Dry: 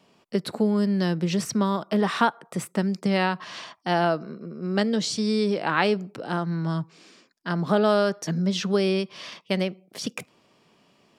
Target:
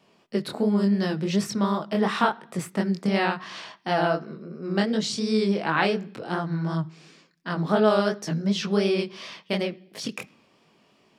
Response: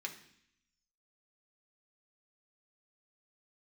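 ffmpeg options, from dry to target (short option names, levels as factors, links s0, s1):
-filter_complex "[0:a]flanger=delay=18.5:depth=7.2:speed=2.8,asplit=2[s0][s1];[1:a]atrim=start_sample=2205,lowpass=6000[s2];[s1][s2]afir=irnorm=-1:irlink=0,volume=0.266[s3];[s0][s3]amix=inputs=2:normalize=0,volume=1.19"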